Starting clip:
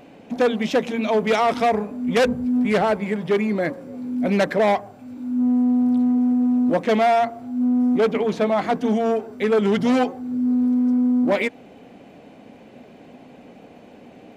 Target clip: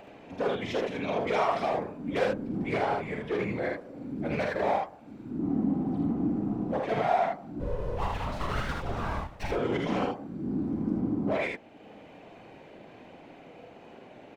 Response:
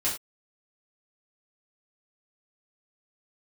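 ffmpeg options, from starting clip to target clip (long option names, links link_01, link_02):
-filter_complex "[0:a]asplit=2[link_01][link_02];[link_02]highpass=frequency=720:poles=1,volume=10dB,asoftclip=type=tanh:threshold=-9dB[link_03];[link_01][link_03]amix=inputs=2:normalize=0,lowpass=frequency=2600:poles=1,volume=-6dB,asplit=3[link_04][link_05][link_06];[link_04]afade=type=out:start_time=7.59:duration=0.02[link_07];[link_05]aeval=exprs='abs(val(0))':channel_layout=same,afade=type=in:start_time=7.59:duration=0.02,afade=type=out:start_time=9.5:duration=0.02[link_08];[link_06]afade=type=in:start_time=9.5:duration=0.02[link_09];[link_07][link_08][link_09]amix=inputs=3:normalize=0,afftfilt=real='hypot(re,im)*cos(2*PI*random(0))':imag='hypot(re,im)*sin(2*PI*random(1))':win_size=512:overlap=0.75,acompressor=mode=upward:threshold=-39dB:ratio=2.5,asplit=2[link_10][link_11];[link_11]aecho=0:1:43|53|78:0.422|0.398|0.668[link_12];[link_10][link_12]amix=inputs=2:normalize=0,volume=-5.5dB"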